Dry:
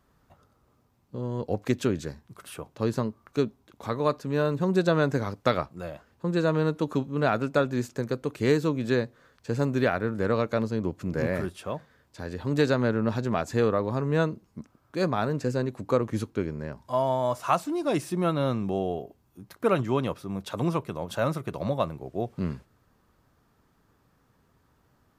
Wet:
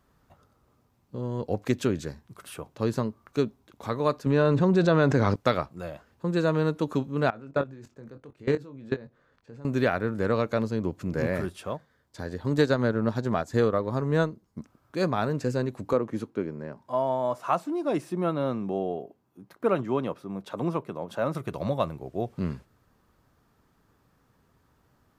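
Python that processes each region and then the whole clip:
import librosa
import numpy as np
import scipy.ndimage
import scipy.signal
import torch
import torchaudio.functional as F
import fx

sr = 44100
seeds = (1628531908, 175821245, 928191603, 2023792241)

y = fx.chain(x, sr, fx.air_absorb(metres=78.0),
    fx.env_flatten(amount_pct=70), at=(4.26, 5.36))
y = fx.chain(y, sr, fx.lowpass(hz=2100.0, slope=6),
    fx.level_steps(step_db=22),
    fx.doubler(ms=22.0, db=-9), at=(7.3, 9.65))
y = fx.chain(y, sr, fx.peak_eq(hz=2600.0, db=-7.5, octaves=0.2),
    fx.transient(attack_db=2, sustain_db=-6), at=(11.69, 14.6))
y = fx.chain(y, sr, fx.highpass(hz=170.0, slope=12),
    fx.high_shelf(hz=2300.0, db=-10.0), at=(15.93, 21.35))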